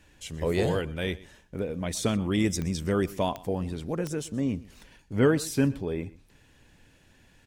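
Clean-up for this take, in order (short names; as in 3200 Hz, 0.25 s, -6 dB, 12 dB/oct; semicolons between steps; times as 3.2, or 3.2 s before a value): de-click; inverse comb 0.123 s -20 dB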